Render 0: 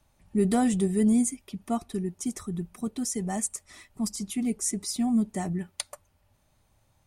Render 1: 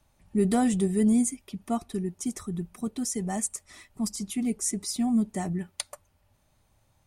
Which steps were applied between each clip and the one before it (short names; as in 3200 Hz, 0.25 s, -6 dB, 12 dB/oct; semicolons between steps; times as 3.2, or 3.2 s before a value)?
nothing audible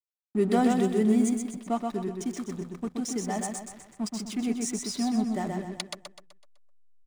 BPF 250–6000 Hz; backlash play -40 dBFS; feedback echo 0.126 s, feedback 44%, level -4 dB; gain +2 dB